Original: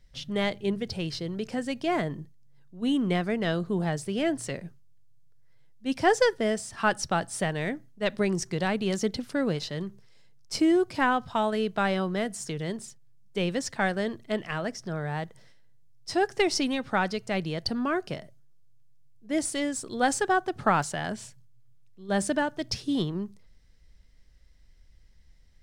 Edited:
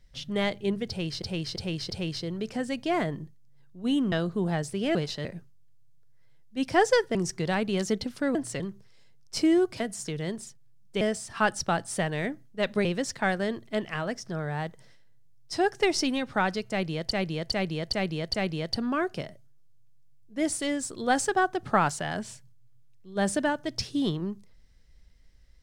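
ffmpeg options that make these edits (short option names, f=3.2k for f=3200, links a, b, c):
-filter_complex "[0:a]asplit=17[a][b][c][d][e][f][g][h][i][j][k][l][m][n][o][p][q];[a]atrim=end=1.222[r];[b]atrim=start=0.878:end=1.222[s];[c]atrim=start=0.878:end=1.222[t];[d]atrim=start=0.878:end=3.102[u];[e]atrim=start=3.458:end=4.292[v];[f]atrim=start=9.478:end=9.782[w];[g]atrim=start=4.538:end=6.442[x];[h]atrim=start=8.278:end=9.482[y];[i]atrim=start=4.288:end=4.542[z];[j]atrim=start=9.778:end=10.982[aa];[k]atrim=start=12.208:end=13.422[ab];[l]atrim=start=6.438:end=8.282[ac];[m]atrim=start=13.418:end=17.682[ad];[n]atrim=start=17.268:end=17.682[ae];[o]atrim=start=17.268:end=17.682[af];[p]atrim=start=17.268:end=17.682[ag];[q]atrim=start=17.268[ah];[r][s]acrossfade=d=0.004:c1=hsin:c2=hsin[ai];[ai][t]acrossfade=d=0.004:c1=hsin:c2=hsin[aj];[aj][u]acrossfade=d=0.004:c1=hsin:c2=hsin[ak];[ak][v]acrossfade=d=0.004:c1=hsin:c2=hsin[al];[al][w]acrossfade=d=0.004:c1=hsin:c2=hsin[am];[am][x]acrossfade=d=0.004:c1=hsin:c2=hsin[an];[an][y]acrossfade=d=0.004:c1=hsin:c2=hsin[ao];[ao][z]acrossfade=d=0.004:c1=hsin:c2=hsin[ap];[ap][aa]acrossfade=d=0.004:c1=hsin:c2=hsin[aq];[aq][ab]acrossfade=d=0.004:c1=hsin:c2=hsin[ar];[ar][ac]acrossfade=d=0.004:c1=hsin:c2=hsin[as];[as][ad]acrossfade=d=0.004:c1=hsin:c2=hsin[at];[at][ae]acrossfade=d=0.004:c1=hsin:c2=hsin[au];[au][af]acrossfade=d=0.004:c1=hsin:c2=hsin[av];[av][ag]acrossfade=d=0.004:c1=hsin:c2=hsin[aw];[aw][ah]acrossfade=d=0.004:c1=hsin:c2=hsin"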